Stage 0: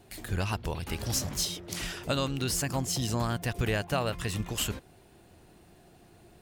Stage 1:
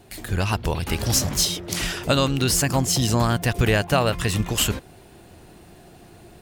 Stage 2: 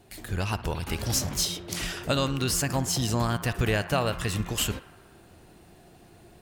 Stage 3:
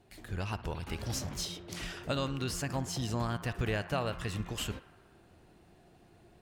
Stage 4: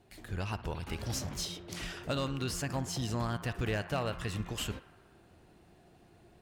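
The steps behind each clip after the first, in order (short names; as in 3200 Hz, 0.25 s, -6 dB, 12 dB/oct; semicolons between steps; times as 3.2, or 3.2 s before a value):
AGC gain up to 3.5 dB; gain +6 dB
narrowing echo 60 ms, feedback 81%, band-pass 1300 Hz, level -14 dB; gain -6 dB
high shelf 6800 Hz -9.5 dB; gain -7 dB
one-sided clip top -28 dBFS, bottom -24.5 dBFS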